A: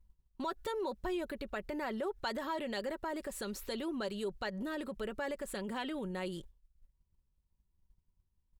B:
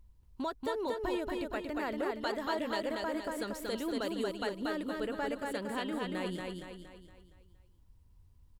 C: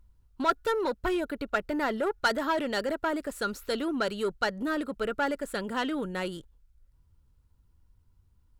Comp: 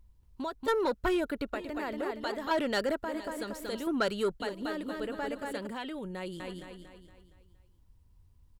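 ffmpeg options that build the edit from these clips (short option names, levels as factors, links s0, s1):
-filter_complex "[2:a]asplit=3[s0][s1][s2];[1:a]asplit=5[s3][s4][s5][s6][s7];[s3]atrim=end=0.682[s8];[s0]atrim=start=0.678:end=1.542[s9];[s4]atrim=start=1.538:end=2.512[s10];[s1]atrim=start=2.508:end=3.042[s11];[s5]atrim=start=3.038:end=3.872[s12];[s2]atrim=start=3.868:end=4.402[s13];[s6]atrim=start=4.398:end=5.672[s14];[0:a]atrim=start=5.668:end=6.402[s15];[s7]atrim=start=6.398[s16];[s8][s9]acrossfade=d=0.004:c1=hsin:c2=hsin[s17];[s17][s10]acrossfade=d=0.004:c1=hsin:c2=hsin[s18];[s18][s11]acrossfade=d=0.004:c1=hsin:c2=hsin[s19];[s19][s12]acrossfade=d=0.004:c1=hsin:c2=hsin[s20];[s20][s13]acrossfade=d=0.004:c1=hsin:c2=hsin[s21];[s21][s14]acrossfade=d=0.004:c1=hsin:c2=hsin[s22];[s22][s15]acrossfade=d=0.004:c1=hsin:c2=hsin[s23];[s23][s16]acrossfade=d=0.004:c1=hsin:c2=hsin"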